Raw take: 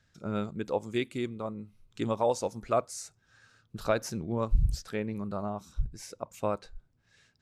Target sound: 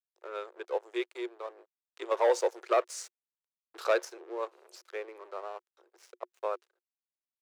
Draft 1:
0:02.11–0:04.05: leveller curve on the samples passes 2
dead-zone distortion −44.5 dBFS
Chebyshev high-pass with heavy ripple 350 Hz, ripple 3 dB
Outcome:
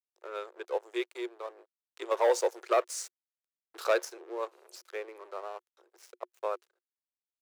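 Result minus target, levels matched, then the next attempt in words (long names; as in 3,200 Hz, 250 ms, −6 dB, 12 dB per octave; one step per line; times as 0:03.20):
8,000 Hz band +3.5 dB
0:02.11–0:04.05: leveller curve on the samples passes 2
dead-zone distortion −44.5 dBFS
Chebyshev high-pass with heavy ripple 350 Hz, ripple 3 dB
high-shelf EQ 8,400 Hz −9 dB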